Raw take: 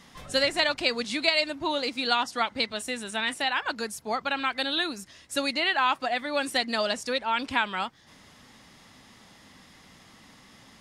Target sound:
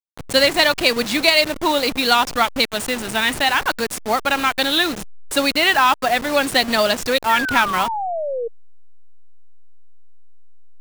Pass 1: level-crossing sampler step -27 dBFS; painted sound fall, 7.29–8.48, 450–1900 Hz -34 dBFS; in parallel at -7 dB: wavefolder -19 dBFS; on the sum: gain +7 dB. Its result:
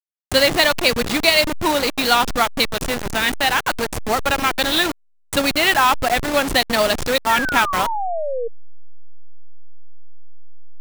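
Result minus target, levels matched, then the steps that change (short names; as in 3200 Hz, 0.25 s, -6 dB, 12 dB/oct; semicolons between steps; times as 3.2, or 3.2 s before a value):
level-crossing sampler: distortion +7 dB
change: level-crossing sampler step -33 dBFS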